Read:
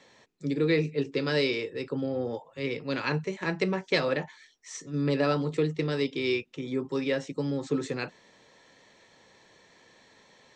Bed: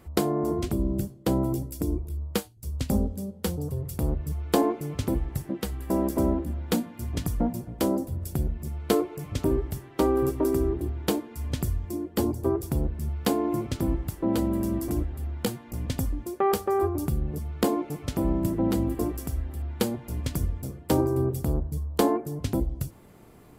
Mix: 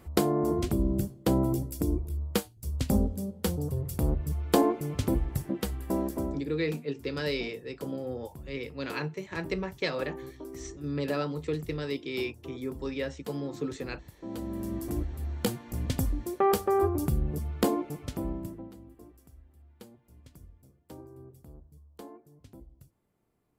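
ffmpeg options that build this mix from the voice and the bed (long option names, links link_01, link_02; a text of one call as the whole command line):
ffmpeg -i stem1.wav -i stem2.wav -filter_complex "[0:a]adelay=5900,volume=-5dB[link_01];[1:a]volume=17dB,afade=type=out:start_time=5.61:duration=0.91:silence=0.133352,afade=type=in:start_time=14.16:duration=1.35:silence=0.133352,afade=type=out:start_time=17.49:duration=1.22:silence=0.0668344[link_02];[link_01][link_02]amix=inputs=2:normalize=0" out.wav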